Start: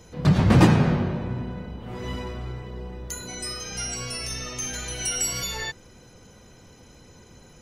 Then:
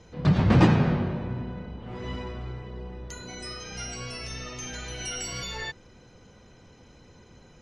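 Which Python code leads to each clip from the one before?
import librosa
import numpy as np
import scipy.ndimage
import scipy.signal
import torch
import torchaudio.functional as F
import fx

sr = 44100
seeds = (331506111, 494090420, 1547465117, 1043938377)

y = scipy.signal.sosfilt(scipy.signal.butter(2, 4800.0, 'lowpass', fs=sr, output='sos'), x)
y = y * 10.0 ** (-2.5 / 20.0)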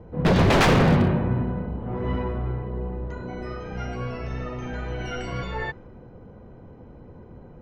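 y = fx.env_lowpass(x, sr, base_hz=800.0, full_db=-16.5)
y = 10.0 ** (-20.5 / 20.0) * (np.abs((y / 10.0 ** (-20.5 / 20.0) + 3.0) % 4.0 - 2.0) - 1.0)
y = y * 10.0 ** (8.5 / 20.0)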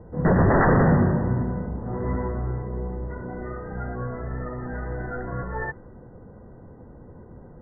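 y = fx.brickwall_lowpass(x, sr, high_hz=2000.0)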